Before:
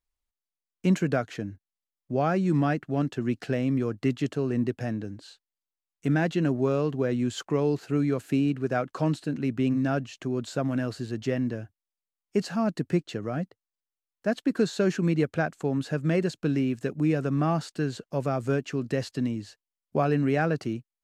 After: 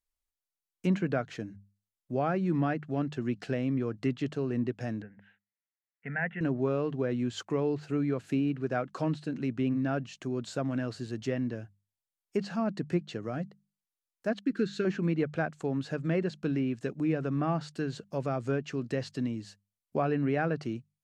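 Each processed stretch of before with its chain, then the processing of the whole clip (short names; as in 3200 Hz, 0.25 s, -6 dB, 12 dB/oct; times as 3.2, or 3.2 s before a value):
5.02–6.41 speaker cabinet 170–2400 Hz, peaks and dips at 200 Hz +3 dB, 590 Hz -8 dB, 860 Hz -3 dB, 1300 Hz +10 dB, 1900 Hz +9 dB + fixed phaser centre 1200 Hz, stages 6
14.39–14.85 expander -49 dBFS + band shelf 760 Hz -16 dB 1.2 oct
whole clip: treble ducked by the level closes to 3000 Hz, closed at -21 dBFS; high shelf 7200 Hz +6.5 dB; notches 50/100/150/200 Hz; gain -4 dB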